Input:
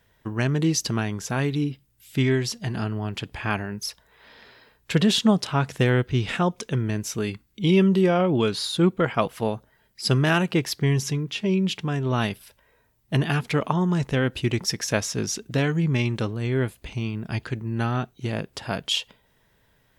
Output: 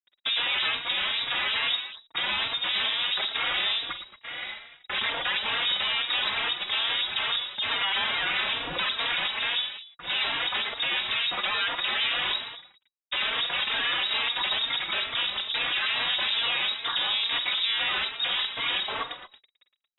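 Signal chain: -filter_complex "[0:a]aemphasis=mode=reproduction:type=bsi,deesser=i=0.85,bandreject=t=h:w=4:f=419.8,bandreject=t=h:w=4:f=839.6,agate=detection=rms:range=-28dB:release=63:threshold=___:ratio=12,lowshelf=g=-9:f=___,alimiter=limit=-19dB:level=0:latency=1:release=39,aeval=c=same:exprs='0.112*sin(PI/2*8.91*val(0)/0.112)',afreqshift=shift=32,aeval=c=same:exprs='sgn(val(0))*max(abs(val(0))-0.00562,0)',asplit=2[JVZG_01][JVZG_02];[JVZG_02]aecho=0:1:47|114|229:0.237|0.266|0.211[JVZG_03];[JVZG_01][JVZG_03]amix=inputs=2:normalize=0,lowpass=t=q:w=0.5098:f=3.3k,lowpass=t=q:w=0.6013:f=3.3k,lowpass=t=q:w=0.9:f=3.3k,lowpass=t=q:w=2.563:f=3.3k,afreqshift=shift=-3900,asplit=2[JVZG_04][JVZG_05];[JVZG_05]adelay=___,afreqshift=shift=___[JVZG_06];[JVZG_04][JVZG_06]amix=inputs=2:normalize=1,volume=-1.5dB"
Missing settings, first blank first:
-50dB, 490, 3.7, 2.3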